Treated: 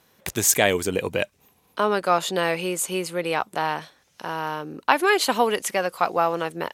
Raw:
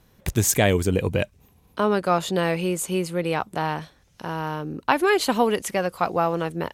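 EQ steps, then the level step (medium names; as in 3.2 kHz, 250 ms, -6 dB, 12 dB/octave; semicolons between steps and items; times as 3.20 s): high-pass 540 Hz 6 dB/octave; +3.0 dB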